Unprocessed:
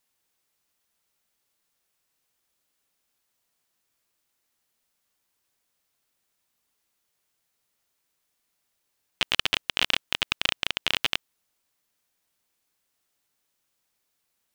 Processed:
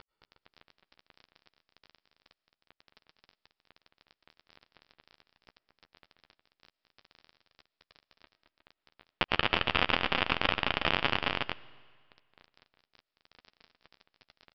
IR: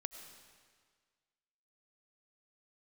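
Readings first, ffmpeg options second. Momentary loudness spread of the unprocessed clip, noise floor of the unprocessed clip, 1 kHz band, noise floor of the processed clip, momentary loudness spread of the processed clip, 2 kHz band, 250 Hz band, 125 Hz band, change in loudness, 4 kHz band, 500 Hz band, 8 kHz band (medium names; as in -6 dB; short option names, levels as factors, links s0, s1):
4 LU, -77 dBFS, +5.5 dB, under -85 dBFS, 8 LU, -1.0 dB, +6.0 dB, +6.5 dB, -3.5 dB, -6.0 dB, +6.0 dB, under -25 dB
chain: -filter_complex "[0:a]lowpass=1600,acompressor=mode=upward:threshold=0.00708:ratio=2.5,aresample=11025,acrusher=bits=6:dc=4:mix=0:aa=0.000001,aresample=44100,aecho=1:1:218|362:0.335|0.282,asplit=2[s0][s1];[1:a]atrim=start_sample=2205,adelay=12[s2];[s1][s2]afir=irnorm=-1:irlink=0,volume=0.251[s3];[s0][s3]amix=inputs=2:normalize=0,alimiter=level_in=6.68:limit=0.891:release=50:level=0:latency=1,volume=0.473"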